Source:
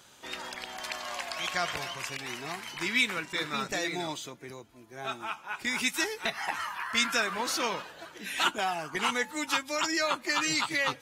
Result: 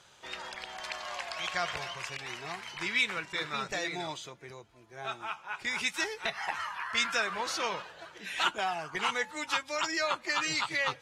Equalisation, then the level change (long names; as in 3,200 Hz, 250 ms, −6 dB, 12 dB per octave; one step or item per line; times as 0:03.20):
high-frequency loss of the air 52 metres
parametric band 260 Hz −10 dB 0.64 octaves
−1.0 dB